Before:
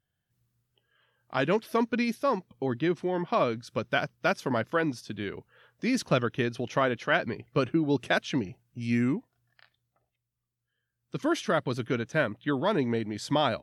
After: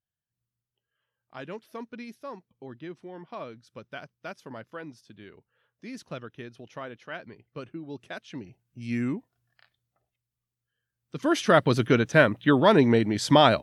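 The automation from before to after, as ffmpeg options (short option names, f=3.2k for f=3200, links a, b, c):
-af "volume=8dB,afade=t=in:st=8.24:d=0.82:silence=0.281838,afade=t=in:st=11.15:d=0.43:silence=0.316228"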